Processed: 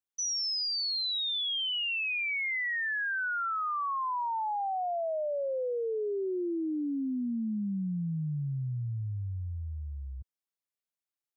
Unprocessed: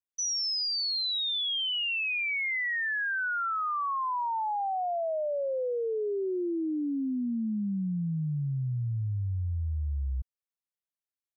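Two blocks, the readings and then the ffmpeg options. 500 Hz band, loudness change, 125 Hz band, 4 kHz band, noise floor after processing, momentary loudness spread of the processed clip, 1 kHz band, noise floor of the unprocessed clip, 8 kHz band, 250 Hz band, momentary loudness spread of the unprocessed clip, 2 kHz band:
-1.5 dB, -1.5 dB, -3.5 dB, -1.5 dB, under -85 dBFS, 8 LU, -1.5 dB, under -85 dBFS, no reading, -1.5 dB, 5 LU, -1.5 dB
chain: -af "highpass=96,volume=0.841"

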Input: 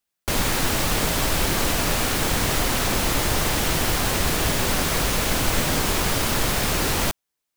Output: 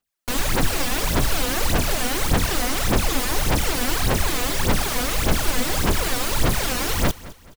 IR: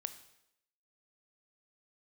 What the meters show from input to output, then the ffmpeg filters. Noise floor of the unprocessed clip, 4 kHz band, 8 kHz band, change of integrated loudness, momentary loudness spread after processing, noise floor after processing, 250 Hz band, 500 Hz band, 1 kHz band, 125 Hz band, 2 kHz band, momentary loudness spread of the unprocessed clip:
-82 dBFS, -1.5 dB, -1.5 dB, -0.5 dB, 1 LU, -49 dBFS, +0.5 dB, 0.0 dB, -0.5 dB, +1.0 dB, -1.0 dB, 0 LU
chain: -af "aphaser=in_gain=1:out_gain=1:delay=4.1:decay=0.72:speed=1.7:type=sinusoidal,aecho=1:1:213|426|639:0.119|0.0428|0.0154,volume=0.596"

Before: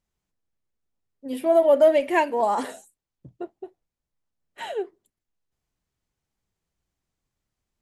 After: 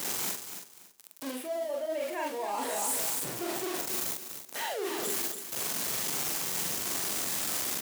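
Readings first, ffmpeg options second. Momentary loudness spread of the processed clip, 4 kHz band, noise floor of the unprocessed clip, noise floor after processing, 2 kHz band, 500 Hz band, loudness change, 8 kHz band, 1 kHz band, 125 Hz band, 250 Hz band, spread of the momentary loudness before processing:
8 LU, +8.5 dB, under -85 dBFS, -54 dBFS, -3.0 dB, -13.0 dB, -10.0 dB, +20.0 dB, -8.5 dB, no reading, -7.5 dB, 21 LU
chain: -filter_complex "[0:a]aeval=exprs='val(0)+0.5*0.0531*sgn(val(0))':c=same,aecho=1:1:281|562|843:0.266|0.0612|0.0141,acrossover=split=600|2300[s0][s1][s2];[s2]volume=50.1,asoftclip=hard,volume=0.02[s3];[s0][s1][s3]amix=inputs=3:normalize=0,highpass=250,asplit=2[s4][s5];[s5]adelay=44,volume=0.794[s6];[s4][s6]amix=inputs=2:normalize=0,areverse,acompressor=threshold=0.0447:ratio=12,areverse,highshelf=f=5000:g=11.5,volume=0.631"

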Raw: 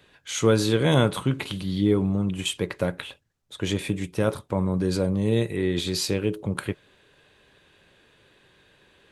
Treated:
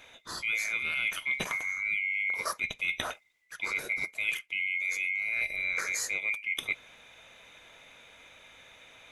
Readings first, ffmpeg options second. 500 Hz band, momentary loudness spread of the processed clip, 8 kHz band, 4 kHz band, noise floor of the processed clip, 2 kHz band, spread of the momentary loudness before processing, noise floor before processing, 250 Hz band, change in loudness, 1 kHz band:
-22.5 dB, 6 LU, -4.0 dB, -7.5 dB, -61 dBFS, +8.0 dB, 10 LU, -61 dBFS, -28.5 dB, -5.0 dB, -7.0 dB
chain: -af "afftfilt=real='real(if(lt(b,920),b+92*(1-2*mod(floor(b/92),2)),b),0)':imag='imag(if(lt(b,920),b+92*(1-2*mod(floor(b/92),2)),b),0)':win_size=2048:overlap=0.75,areverse,acompressor=threshold=0.0224:ratio=8,areverse,volume=1.68"

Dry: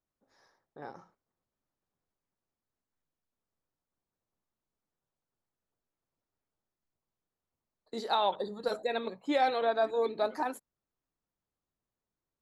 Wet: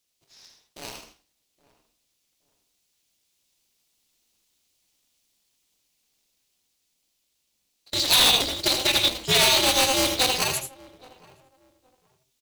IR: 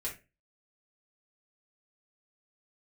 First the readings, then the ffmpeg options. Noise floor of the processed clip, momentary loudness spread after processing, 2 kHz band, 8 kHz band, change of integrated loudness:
-74 dBFS, 10 LU, +14.0 dB, no reading, +12.0 dB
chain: -filter_complex "[0:a]highpass=130,asplit=2[s0][s1];[s1]acrusher=samples=25:mix=1:aa=0.000001,volume=0.398[s2];[s0][s2]amix=inputs=2:normalize=0,highshelf=f=7900:g=-9,asplit=2[s3][s4];[s4]adelay=819,lowpass=f=940:p=1,volume=0.0794,asplit=2[s5][s6];[s6]adelay=819,lowpass=f=940:p=1,volume=0.25[s7];[s3][s5][s7]amix=inputs=3:normalize=0,aexciter=amount=10.5:drive=5.6:freq=2300,asplit=2[s8][s9];[1:a]atrim=start_sample=2205,asetrate=66150,aresample=44100,adelay=76[s10];[s9][s10]afir=irnorm=-1:irlink=0,volume=0.708[s11];[s8][s11]amix=inputs=2:normalize=0,asubboost=boost=2:cutoff=180,dynaudnorm=f=730:g=7:m=1.78,aeval=exprs='0.266*(abs(mod(val(0)/0.266+3,4)-2)-1)':c=same,aeval=exprs='val(0)*sgn(sin(2*PI*130*n/s))':c=same"

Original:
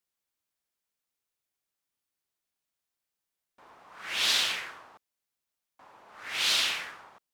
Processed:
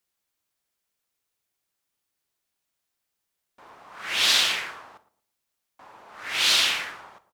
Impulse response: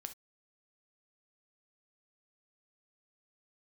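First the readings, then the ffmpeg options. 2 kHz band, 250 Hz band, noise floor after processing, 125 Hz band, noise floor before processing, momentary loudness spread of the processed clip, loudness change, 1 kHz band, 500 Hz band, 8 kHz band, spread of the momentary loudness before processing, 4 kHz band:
+5.5 dB, +6.0 dB, -82 dBFS, no reading, under -85 dBFS, 19 LU, +5.5 dB, +6.0 dB, +5.5 dB, +5.5 dB, 19 LU, +5.5 dB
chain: -filter_complex "[0:a]asplit=2[s0][s1];[s1]adelay=114,lowpass=f=1100:p=1,volume=0.178,asplit=2[s2][s3];[s3]adelay=114,lowpass=f=1100:p=1,volume=0.3,asplit=2[s4][s5];[s5]adelay=114,lowpass=f=1100:p=1,volume=0.3[s6];[s0][s2][s4][s6]amix=inputs=4:normalize=0,asplit=2[s7][s8];[1:a]atrim=start_sample=2205[s9];[s8][s9]afir=irnorm=-1:irlink=0,volume=1.5[s10];[s7][s10]amix=inputs=2:normalize=0"

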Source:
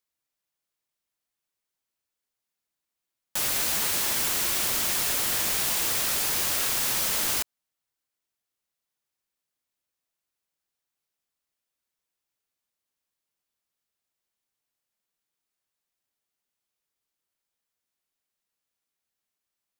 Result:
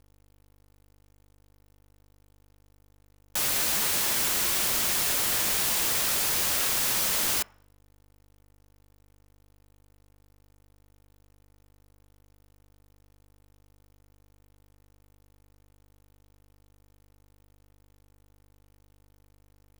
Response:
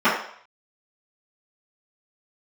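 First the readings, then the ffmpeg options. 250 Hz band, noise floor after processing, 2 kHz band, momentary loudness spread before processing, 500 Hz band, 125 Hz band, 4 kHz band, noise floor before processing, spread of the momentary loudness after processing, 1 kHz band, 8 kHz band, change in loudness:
+0.5 dB, -60 dBFS, 0.0 dB, 2 LU, +0.5 dB, +0.5 dB, 0.0 dB, under -85 dBFS, 2 LU, 0.0 dB, 0.0 dB, 0.0 dB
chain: -filter_complex "[0:a]aeval=exprs='val(0)+0.00126*(sin(2*PI*50*n/s)+sin(2*PI*2*50*n/s)/2+sin(2*PI*3*50*n/s)/3+sin(2*PI*4*50*n/s)/4+sin(2*PI*5*50*n/s)/5)':c=same,acrusher=bits=7:dc=4:mix=0:aa=0.000001,asplit=2[s0][s1];[1:a]atrim=start_sample=2205[s2];[s1][s2]afir=irnorm=-1:irlink=0,volume=0.01[s3];[s0][s3]amix=inputs=2:normalize=0"

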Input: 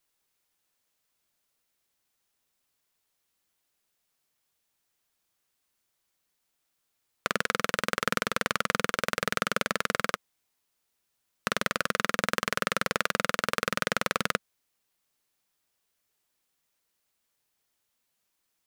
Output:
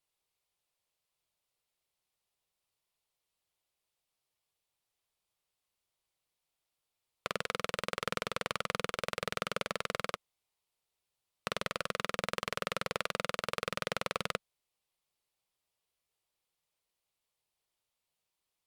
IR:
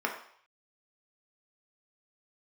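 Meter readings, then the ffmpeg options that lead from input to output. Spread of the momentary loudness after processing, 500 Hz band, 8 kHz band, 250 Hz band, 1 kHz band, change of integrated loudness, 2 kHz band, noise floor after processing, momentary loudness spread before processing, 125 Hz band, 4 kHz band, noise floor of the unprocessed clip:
4 LU, -5.0 dB, -9.0 dB, -9.0 dB, -7.5 dB, -7.5 dB, -9.5 dB, under -85 dBFS, 4 LU, -6.0 dB, -5.5 dB, -79 dBFS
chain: -af "equalizer=f=250:t=o:w=0.67:g=-10,equalizer=f=1600:t=o:w=0.67:g=-8,equalizer=f=6300:t=o:w=0.67:g=-5,equalizer=f=16000:t=o:w=0.67:g=-11,volume=0.668" -ar 48000 -c:a libopus -b:a 256k

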